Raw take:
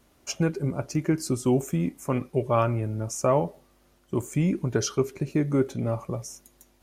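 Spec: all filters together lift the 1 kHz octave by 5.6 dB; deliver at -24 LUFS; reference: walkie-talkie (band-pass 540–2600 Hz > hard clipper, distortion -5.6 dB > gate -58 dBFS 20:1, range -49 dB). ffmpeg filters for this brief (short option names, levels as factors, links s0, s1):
-af "highpass=540,lowpass=2600,equalizer=f=1000:t=o:g=7.5,asoftclip=type=hard:threshold=0.0668,agate=range=0.00355:threshold=0.00126:ratio=20,volume=3.16"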